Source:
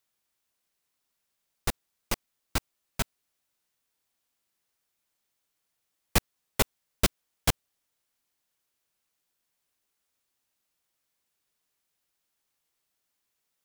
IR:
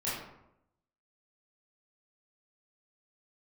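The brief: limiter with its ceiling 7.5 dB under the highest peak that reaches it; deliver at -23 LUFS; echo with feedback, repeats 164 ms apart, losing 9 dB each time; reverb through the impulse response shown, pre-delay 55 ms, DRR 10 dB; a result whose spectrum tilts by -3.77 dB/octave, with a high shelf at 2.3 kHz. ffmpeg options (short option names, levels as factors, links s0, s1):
-filter_complex "[0:a]highshelf=f=2300:g=-4.5,alimiter=limit=0.168:level=0:latency=1,aecho=1:1:164|328|492|656:0.355|0.124|0.0435|0.0152,asplit=2[s0][s1];[1:a]atrim=start_sample=2205,adelay=55[s2];[s1][s2]afir=irnorm=-1:irlink=0,volume=0.158[s3];[s0][s3]amix=inputs=2:normalize=0,volume=5.01"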